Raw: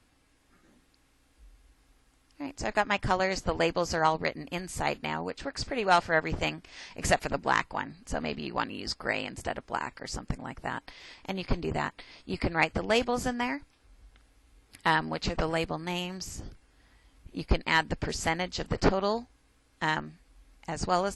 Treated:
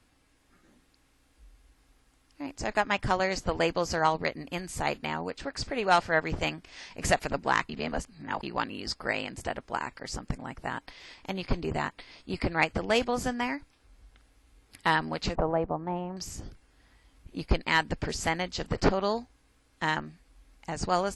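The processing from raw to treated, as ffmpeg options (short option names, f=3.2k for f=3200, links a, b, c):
-filter_complex "[0:a]asettb=1/sr,asplit=3[a][b][c];[a]atrim=end=15.354[d];[b]atrim=start=15.35:end=16.17,asetpts=PTS-STARTPTS,afade=t=in:d=0.004:c=qsin,afade=t=out:st=0.816:d=0.004:c=qsin,lowpass=f=860:t=q:w=1.6[e];[c]atrim=start=16.166[f];[d][e]acrossfade=d=0.004:c1=hsin:c2=qsin[g];[g][f]acrossfade=d=0.004:c1=qsin:c2=hsin,asplit=3[h][i][j];[h]atrim=end=7.692[k];[i]atrim=start=7.688:end=8.432,asetpts=PTS-STARTPTS,areverse[l];[j]atrim=start=8.428[m];[k][l]acrossfade=d=0.004:c1=hsin:c2=hsin[n];[n][m]acrossfade=d=0.004:c1=hsin:c2=hsin"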